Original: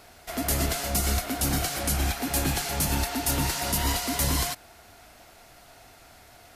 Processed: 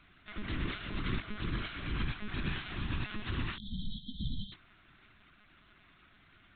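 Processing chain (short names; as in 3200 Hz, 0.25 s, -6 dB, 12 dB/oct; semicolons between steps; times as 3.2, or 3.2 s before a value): spectral delete 3.57–4.53, 270–3100 Hz; monotone LPC vocoder at 8 kHz 210 Hz; band shelf 630 Hz -15 dB 1.2 oct; gain -7 dB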